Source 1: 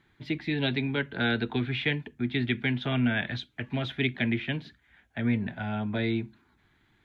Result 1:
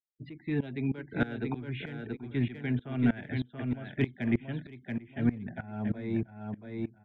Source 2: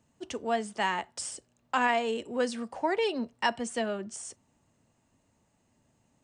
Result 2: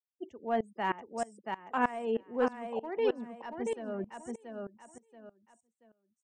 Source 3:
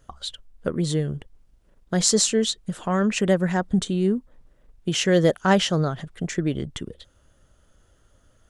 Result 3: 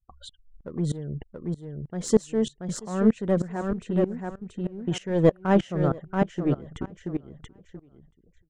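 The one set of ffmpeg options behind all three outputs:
ffmpeg -i in.wav -filter_complex "[0:a]afftfilt=real='re*gte(hypot(re,im),0.01)':imag='im*gte(hypot(re,im),0.01)':win_size=1024:overlap=0.75,firequalizer=gain_entry='entry(370,0);entry(4400,-17);entry(6600,-12)':delay=0.05:min_phase=1,asplit=2[link_01][link_02];[link_02]aeval=exprs='clip(val(0),-1,0.0596)':channel_layout=same,volume=-4dB[link_03];[link_01][link_03]amix=inputs=2:normalize=0,aecho=1:1:681|1362|2043:0.473|0.109|0.025,aeval=exprs='val(0)*pow(10,-21*if(lt(mod(-3.2*n/s,1),2*abs(-3.2)/1000),1-mod(-3.2*n/s,1)/(2*abs(-3.2)/1000),(mod(-3.2*n/s,1)-2*abs(-3.2)/1000)/(1-2*abs(-3.2)/1000))/20)':channel_layout=same" out.wav

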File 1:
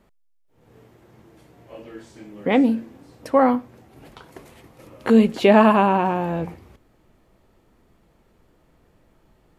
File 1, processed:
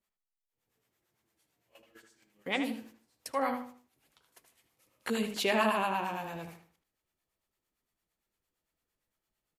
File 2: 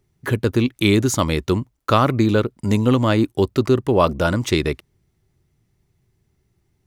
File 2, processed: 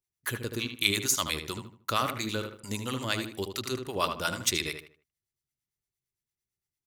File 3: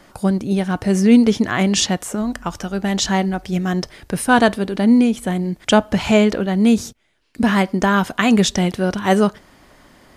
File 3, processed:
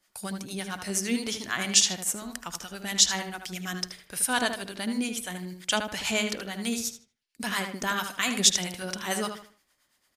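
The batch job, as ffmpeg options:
ffmpeg -i in.wav -filter_complex "[0:a]highshelf=frequency=4900:gain=9.5,agate=range=-14dB:threshold=-37dB:ratio=16:detection=peak,tiltshelf=frequency=1100:gain=-7.5,acrossover=split=630[link_01][link_02];[link_01]aeval=exprs='val(0)*(1-0.7/2+0.7/2*cos(2*PI*8.8*n/s))':channel_layout=same[link_03];[link_02]aeval=exprs='val(0)*(1-0.7/2-0.7/2*cos(2*PI*8.8*n/s))':channel_layout=same[link_04];[link_03][link_04]amix=inputs=2:normalize=0,asplit=2[link_05][link_06];[link_06]adelay=77,lowpass=frequency=3000:poles=1,volume=-6.5dB,asplit=2[link_07][link_08];[link_08]adelay=77,lowpass=frequency=3000:poles=1,volume=0.33,asplit=2[link_09][link_10];[link_10]adelay=77,lowpass=frequency=3000:poles=1,volume=0.33,asplit=2[link_11][link_12];[link_12]adelay=77,lowpass=frequency=3000:poles=1,volume=0.33[link_13];[link_07][link_09][link_11][link_13]amix=inputs=4:normalize=0[link_14];[link_05][link_14]amix=inputs=2:normalize=0,volume=-9dB" out.wav

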